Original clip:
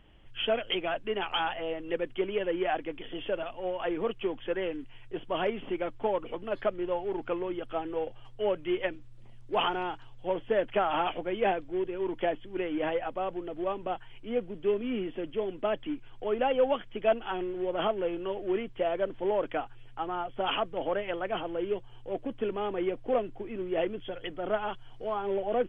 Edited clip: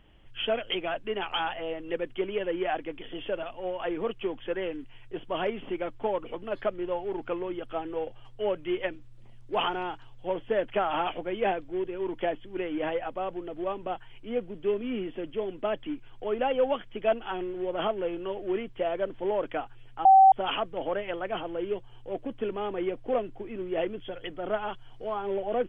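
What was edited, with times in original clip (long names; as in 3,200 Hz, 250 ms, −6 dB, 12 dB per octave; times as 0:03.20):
0:20.05–0:20.32: beep over 770 Hz −12 dBFS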